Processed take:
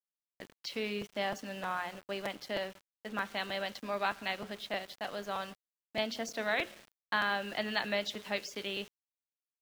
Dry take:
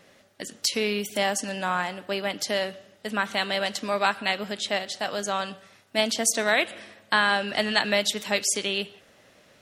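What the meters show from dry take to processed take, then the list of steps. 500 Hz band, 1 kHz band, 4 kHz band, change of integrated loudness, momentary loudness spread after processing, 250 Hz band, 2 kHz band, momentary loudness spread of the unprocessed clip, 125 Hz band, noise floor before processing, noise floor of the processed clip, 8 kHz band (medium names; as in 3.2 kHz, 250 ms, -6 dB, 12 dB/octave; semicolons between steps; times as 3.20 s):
-9.5 dB, -9.0 dB, -11.5 dB, -10.5 dB, 9 LU, -9.5 dB, -9.5 dB, 8 LU, -9.5 dB, -58 dBFS, under -85 dBFS, -21.5 dB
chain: boxcar filter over 5 samples; hum notches 60/120/180/240/300/360/420/480/540 Hz; level-controlled noise filter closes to 2.6 kHz, open at -20.5 dBFS; small samples zeroed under -39.5 dBFS; crackling interface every 0.31 s, samples 256, repeat, from 0.39 s; trim -9 dB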